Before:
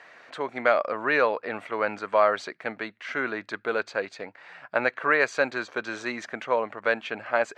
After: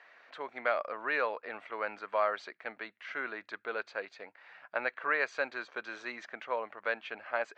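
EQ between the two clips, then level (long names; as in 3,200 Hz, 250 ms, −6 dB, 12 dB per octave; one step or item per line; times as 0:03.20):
high-pass filter 580 Hz 6 dB per octave
low-pass filter 4,500 Hz 12 dB per octave
−7.0 dB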